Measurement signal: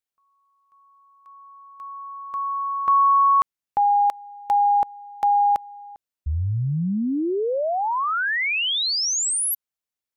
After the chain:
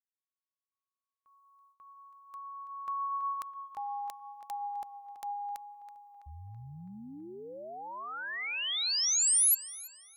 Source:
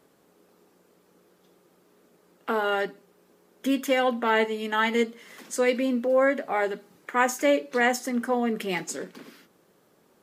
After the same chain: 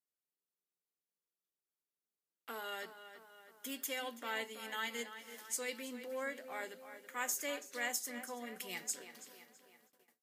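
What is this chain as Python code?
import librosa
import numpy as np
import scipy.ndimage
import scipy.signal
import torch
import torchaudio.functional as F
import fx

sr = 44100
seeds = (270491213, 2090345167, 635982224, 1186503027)

y = librosa.effects.preemphasis(x, coef=0.9, zi=[0.0])
y = fx.echo_tape(y, sr, ms=329, feedback_pct=59, wet_db=-10.5, lp_hz=4000.0, drive_db=15.0, wow_cents=14)
y = fx.gate_hold(y, sr, open_db=-55.0, close_db=-60.0, hold_ms=10.0, range_db=-25, attack_ms=0.13, release_ms=85.0)
y = y * 10.0 ** (-3.0 / 20.0)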